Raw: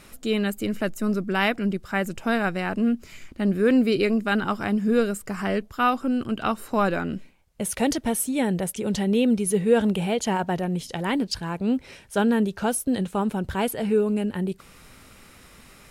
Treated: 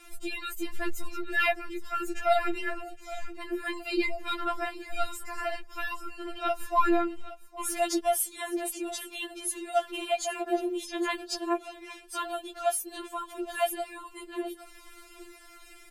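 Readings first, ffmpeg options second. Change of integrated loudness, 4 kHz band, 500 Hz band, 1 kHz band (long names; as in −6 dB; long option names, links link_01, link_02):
−7.0 dB, −3.5 dB, −7.0 dB, −2.5 dB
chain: -af "aecho=1:1:815:0.158,afftfilt=real='re*4*eq(mod(b,16),0)':imag='im*4*eq(mod(b,16),0)':win_size=2048:overlap=0.75"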